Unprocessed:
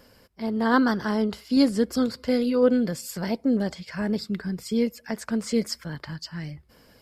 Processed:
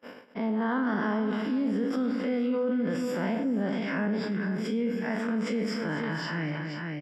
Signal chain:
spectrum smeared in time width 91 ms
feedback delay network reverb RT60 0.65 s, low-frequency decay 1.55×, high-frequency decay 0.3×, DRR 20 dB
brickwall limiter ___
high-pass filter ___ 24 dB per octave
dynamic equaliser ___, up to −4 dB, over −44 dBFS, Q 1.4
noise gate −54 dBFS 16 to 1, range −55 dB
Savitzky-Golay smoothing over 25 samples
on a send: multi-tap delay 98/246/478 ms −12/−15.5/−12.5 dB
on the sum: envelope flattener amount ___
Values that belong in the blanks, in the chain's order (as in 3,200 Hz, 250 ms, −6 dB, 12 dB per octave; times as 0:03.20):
−20.5 dBFS, 210 Hz, 430 Hz, 70%